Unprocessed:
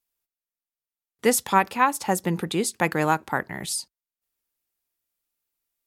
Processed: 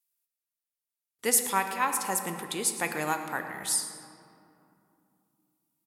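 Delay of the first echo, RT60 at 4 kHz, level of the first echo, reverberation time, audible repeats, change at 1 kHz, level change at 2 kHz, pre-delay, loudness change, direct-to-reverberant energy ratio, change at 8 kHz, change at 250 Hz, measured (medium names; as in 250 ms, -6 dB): 112 ms, 1.3 s, -15.0 dB, 2.7 s, 1, -7.0 dB, -5.0 dB, 3 ms, -4.0 dB, 5.5 dB, +2.0 dB, -10.5 dB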